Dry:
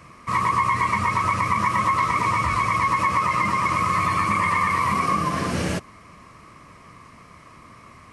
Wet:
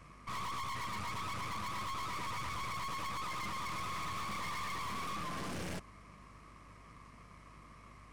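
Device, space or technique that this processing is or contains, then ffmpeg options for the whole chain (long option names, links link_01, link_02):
valve amplifier with mains hum: -af "aeval=exprs='(tanh(39.8*val(0)+0.7)-tanh(0.7))/39.8':channel_layout=same,aeval=exprs='val(0)+0.00251*(sin(2*PI*50*n/s)+sin(2*PI*2*50*n/s)/2+sin(2*PI*3*50*n/s)/3+sin(2*PI*4*50*n/s)/4+sin(2*PI*5*50*n/s)/5)':channel_layout=same,volume=-7dB"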